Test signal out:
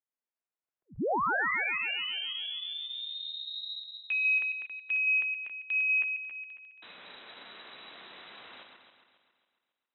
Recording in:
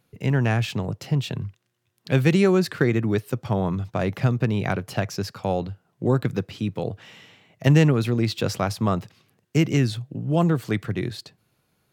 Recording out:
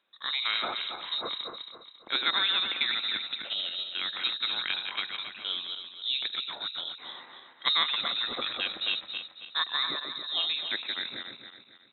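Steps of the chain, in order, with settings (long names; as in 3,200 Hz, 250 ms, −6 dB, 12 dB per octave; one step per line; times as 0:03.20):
feedback delay that plays each chunk backwards 137 ms, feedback 61%, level −5.5 dB
voice inversion scrambler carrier 3,900 Hz
three-way crossover with the lows and the highs turned down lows −22 dB, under 180 Hz, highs −23 dB, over 2,600 Hz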